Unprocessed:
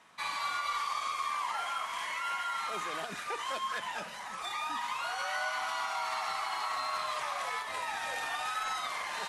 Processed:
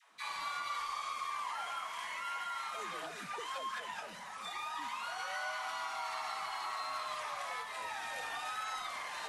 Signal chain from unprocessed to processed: dispersion lows, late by 0.141 s, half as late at 410 Hz; gain -5 dB

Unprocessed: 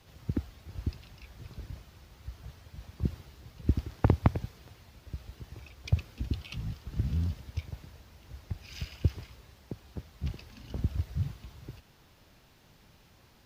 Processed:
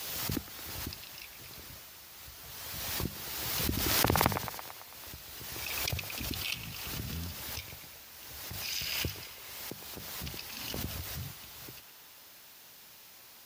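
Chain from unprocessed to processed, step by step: RIAA curve recording; notches 50/100/150/200 Hz; band-limited delay 0.111 s, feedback 63%, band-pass 1300 Hz, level -6 dB; backwards sustainer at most 25 dB/s; gain +2.5 dB

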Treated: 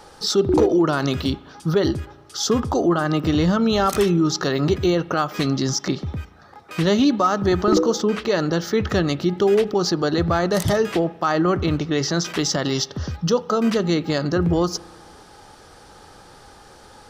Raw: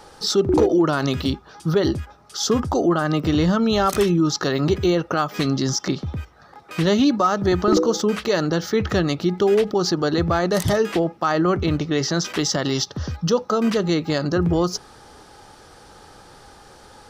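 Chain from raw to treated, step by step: 7.98–8.4 bell 12000 Hz -9.5 dB 1.3 oct; spring tank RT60 1.4 s, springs 35 ms, chirp 80 ms, DRR 18.5 dB

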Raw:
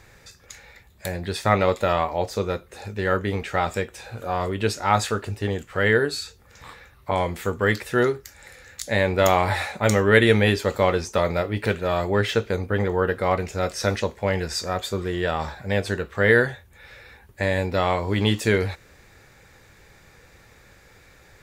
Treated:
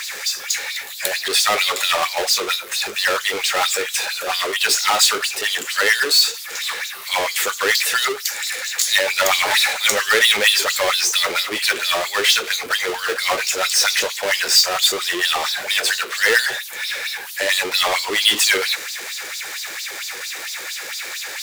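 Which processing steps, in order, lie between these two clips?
LFO high-pass sine 4.4 Hz 340–4700 Hz; power-law curve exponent 0.5; tilt shelf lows -8.5 dB, about 1200 Hz; gain -6.5 dB

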